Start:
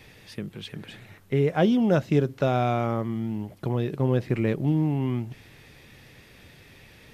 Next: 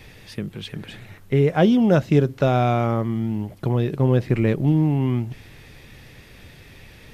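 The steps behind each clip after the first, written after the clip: bass shelf 63 Hz +10 dB; trim +4 dB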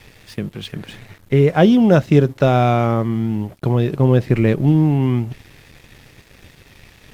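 crossover distortion -48 dBFS; trim +4.5 dB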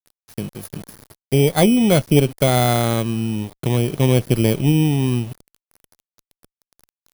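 bit-reversed sample order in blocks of 16 samples; small samples zeroed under -32.5 dBFS; Chebyshev shaper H 2 -13 dB, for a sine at -1 dBFS; trim -2.5 dB

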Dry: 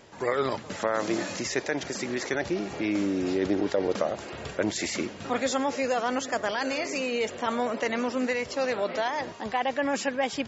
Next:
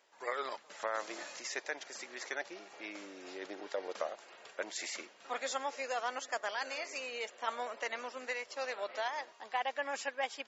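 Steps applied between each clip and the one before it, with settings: high-pass 660 Hz 12 dB/octave; upward expansion 1.5:1, over -44 dBFS; trim -5 dB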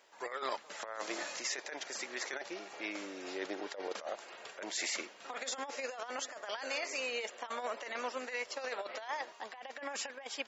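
compressor with a negative ratio -40 dBFS, ratio -0.5; trim +2 dB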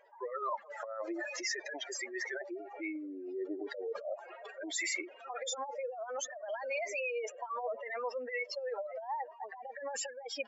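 spectral contrast enhancement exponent 3.5; trim +2.5 dB

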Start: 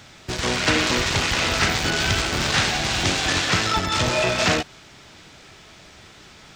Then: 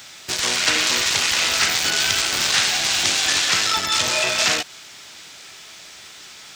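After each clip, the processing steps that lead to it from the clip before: tilt EQ +3.5 dB/octave; compression 1.5:1, threshold -22 dBFS, peak gain reduction 4.5 dB; trim +1 dB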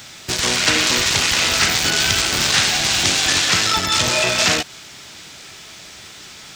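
bass shelf 320 Hz +10 dB; trim +2 dB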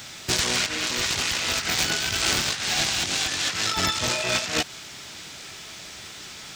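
compressor with a negative ratio -20 dBFS, ratio -0.5; trim -4.5 dB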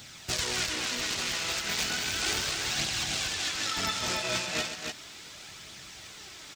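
flange 0.35 Hz, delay 0.2 ms, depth 6 ms, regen +42%; loudspeakers at several distances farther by 45 m -11 dB, 100 m -5 dB; trim -3.5 dB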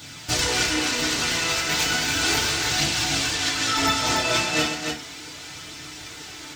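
FDN reverb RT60 0.37 s, low-frequency decay 1.2×, high-frequency decay 0.65×, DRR -4.5 dB; trim +2.5 dB

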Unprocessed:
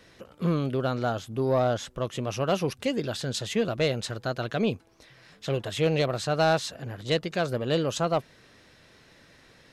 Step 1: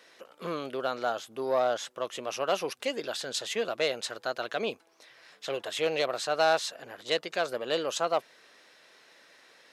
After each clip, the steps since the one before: high-pass 490 Hz 12 dB/octave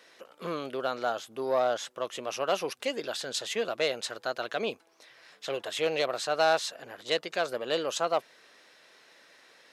no audible change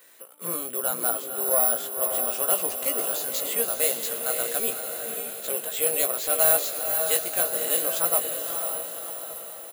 careless resampling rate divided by 4×, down filtered, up zero stuff; doubling 17 ms -5.5 dB; echo that smears into a reverb 539 ms, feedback 53%, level -5 dB; trim -3 dB

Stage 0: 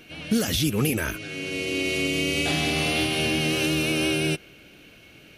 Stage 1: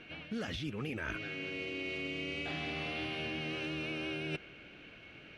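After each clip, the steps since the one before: low-pass 2 kHz 12 dB/octave; tilt shelf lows -5 dB, about 1.3 kHz; reverse; compression 6:1, threshold -36 dBFS, peak gain reduction 13 dB; reverse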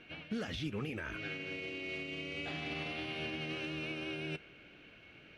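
peak limiter -32.5 dBFS, peak gain reduction 6.5 dB; reverberation, pre-delay 7 ms, DRR 15 dB; upward expansion 1.5:1, over -52 dBFS; trim +3.5 dB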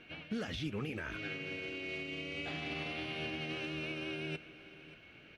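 delay 581 ms -17 dB

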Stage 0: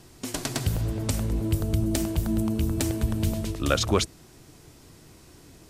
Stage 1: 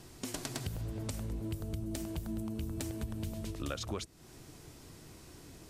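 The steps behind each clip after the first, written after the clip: compression 4:1, threshold -35 dBFS, peak gain reduction 15.5 dB; trim -2 dB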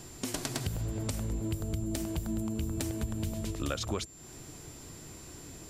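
whistle 7.3 kHz -56 dBFS; trim +4.5 dB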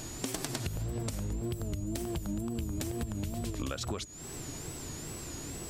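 compression, threshold -38 dBFS, peak gain reduction 10 dB; wow and flutter 130 cents; trim +6 dB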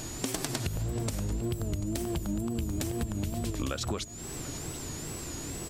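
delay 740 ms -16.5 dB; trim +3 dB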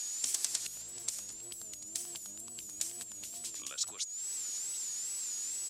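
octave divider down 1 oct, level -1 dB; band-pass filter 7.4 kHz, Q 1.5; trim +5.5 dB

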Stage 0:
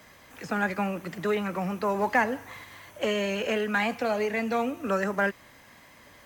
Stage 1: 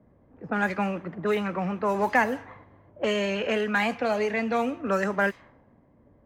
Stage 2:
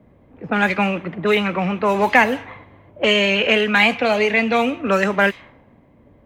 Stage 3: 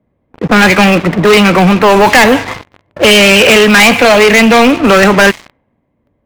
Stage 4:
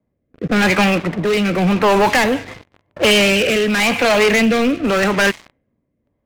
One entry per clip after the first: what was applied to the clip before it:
level-controlled noise filter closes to 360 Hz, open at -21.5 dBFS; trim +1.5 dB
high-order bell 2.9 kHz +8 dB 1.1 oct; trim +7.5 dB
waveshaping leveller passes 5
rotary cabinet horn 0.9 Hz; trim -7 dB

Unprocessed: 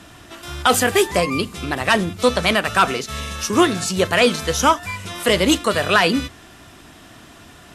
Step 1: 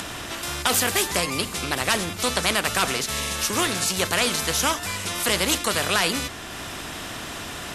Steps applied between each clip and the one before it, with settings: upward compressor, threshold -34 dBFS; spectrum-flattening compressor 2:1; trim -3 dB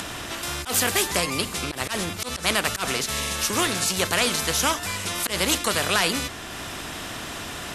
slow attack 113 ms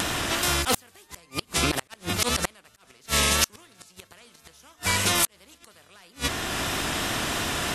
vibrato 3 Hz 46 cents; inverted gate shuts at -14 dBFS, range -36 dB; trim +6 dB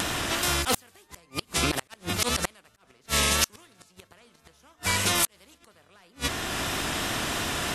tape noise reduction on one side only decoder only; trim -1.5 dB

